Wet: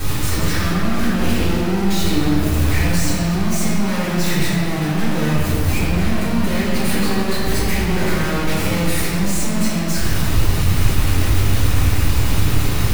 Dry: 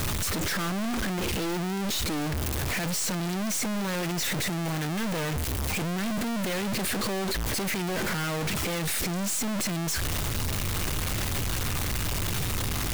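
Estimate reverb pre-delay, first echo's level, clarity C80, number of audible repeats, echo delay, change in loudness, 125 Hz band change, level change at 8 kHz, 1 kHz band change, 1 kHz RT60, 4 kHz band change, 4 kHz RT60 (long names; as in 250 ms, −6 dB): 3 ms, no echo audible, −0.5 dB, no echo audible, no echo audible, +9.5 dB, +13.0 dB, +4.0 dB, +8.0 dB, 2.1 s, +6.0 dB, 1.4 s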